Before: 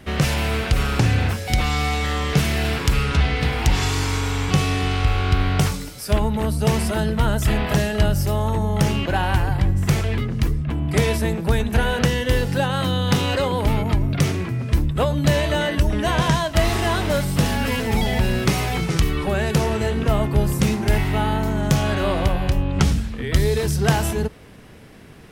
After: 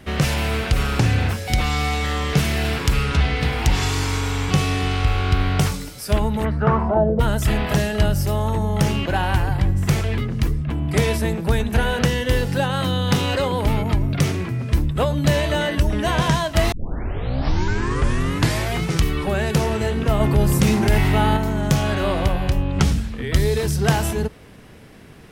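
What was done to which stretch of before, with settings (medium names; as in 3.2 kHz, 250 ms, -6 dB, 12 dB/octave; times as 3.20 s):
6.44–7.19 s: resonant low-pass 2.2 kHz -> 490 Hz
16.72 s: tape start 2.16 s
20.20–21.37 s: level flattener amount 50%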